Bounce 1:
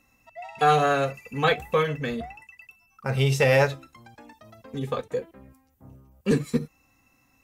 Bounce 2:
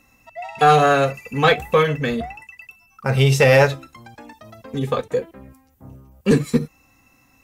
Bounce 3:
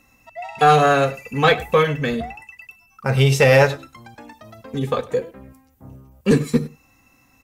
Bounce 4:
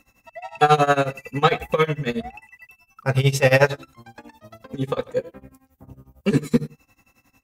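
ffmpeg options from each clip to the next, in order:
-af "acontrast=84"
-filter_complex "[0:a]asplit=2[s0][s1];[s1]adelay=99.13,volume=0.112,highshelf=f=4000:g=-2.23[s2];[s0][s2]amix=inputs=2:normalize=0"
-af "tremolo=f=11:d=0.9,volume=1.12"

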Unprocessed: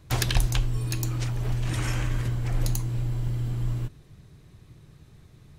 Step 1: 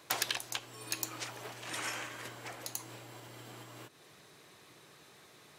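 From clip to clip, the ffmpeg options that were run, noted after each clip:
-af "acompressor=threshold=0.0224:ratio=6,highpass=530,volume=2.11"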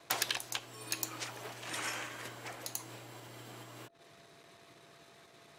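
-af "aeval=exprs='val(0)+0.000631*sin(2*PI*680*n/s)':c=same,anlmdn=0.0001"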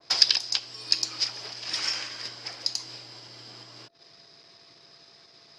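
-af "lowpass=f=5000:t=q:w=14,adynamicequalizer=threshold=0.00631:dfrequency=1800:dqfactor=0.7:tfrequency=1800:tqfactor=0.7:attack=5:release=100:ratio=0.375:range=2.5:mode=boostabove:tftype=highshelf,volume=0.891"

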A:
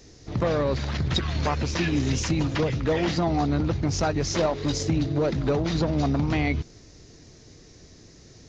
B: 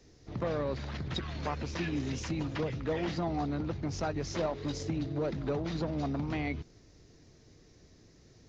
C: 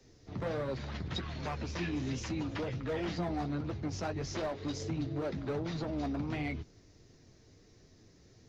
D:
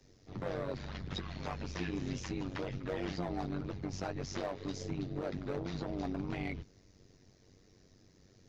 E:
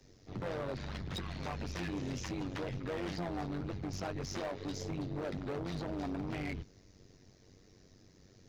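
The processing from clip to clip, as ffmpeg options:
-filter_complex "[0:a]highshelf=f=5600:g=-8.5,acrossover=split=150[s0][s1];[s0]alimiter=level_in=1.58:limit=0.0631:level=0:latency=1,volume=0.631[s2];[s2][s1]amix=inputs=2:normalize=0,volume=0.376"
-filter_complex "[0:a]acrossover=split=140|2100[s0][s1][s2];[s1]asoftclip=type=hard:threshold=0.0299[s3];[s0][s3][s2]amix=inputs=3:normalize=0,flanger=delay=7.5:depth=3.7:regen=-41:speed=1.4:shape=triangular,volume=1.33"
-af "tremolo=f=95:d=0.824,volume=1.12"
-af "asoftclip=type=hard:threshold=0.0168,volume=1.26"

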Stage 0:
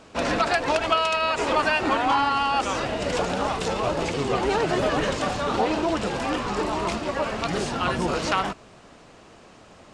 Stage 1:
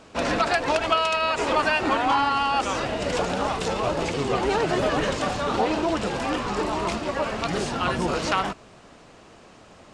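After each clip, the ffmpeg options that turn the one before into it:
-af anull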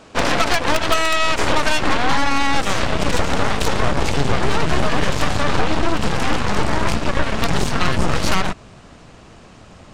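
-af "aeval=exprs='0.422*(cos(1*acos(clip(val(0)/0.422,-1,1)))-cos(1*PI/2))+0.0422*(cos(3*acos(clip(val(0)/0.422,-1,1)))-cos(3*PI/2))+0.0841*(cos(8*acos(clip(val(0)/0.422,-1,1)))-cos(8*PI/2))':c=same,asubboost=boost=2:cutoff=230,acompressor=threshold=0.112:ratio=3,volume=2.37"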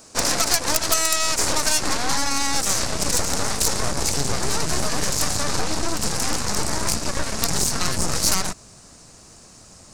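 -af "aexciter=amount=6.1:drive=7.1:freq=4600,volume=0.447"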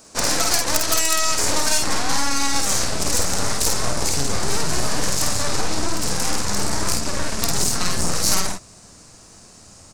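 -af "aecho=1:1:50|60:0.631|0.335,volume=0.891"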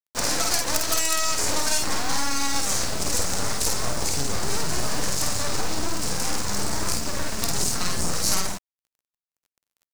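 -af "acrusher=bits=4:mix=0:aa=0.5,volume=0.631"

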